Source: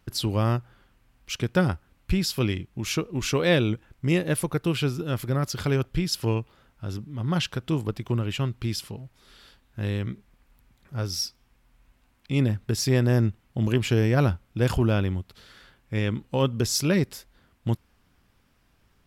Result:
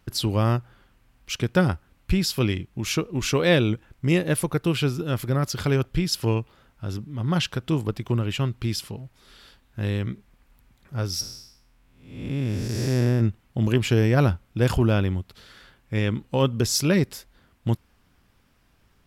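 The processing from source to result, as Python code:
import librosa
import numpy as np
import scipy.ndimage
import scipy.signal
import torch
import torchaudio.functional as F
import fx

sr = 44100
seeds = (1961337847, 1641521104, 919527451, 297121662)

y = fx.spec_blur(x, sr, span_ms=348.0, at=(11.2, 13.2), fade=0.02)
y = y * librosa.db_to_amplitude(2.0)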